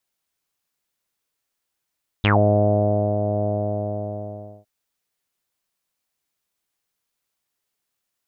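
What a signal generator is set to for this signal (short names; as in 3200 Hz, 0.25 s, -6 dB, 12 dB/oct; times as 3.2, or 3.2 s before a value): synth note saw G#2 24 dB/oct, low-pass 660 Hz, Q 10, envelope 2.5 oct, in 0.13 s, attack 1.7 ms, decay 0.93 s, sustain -7 dB, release 1.21 s, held 1.20 s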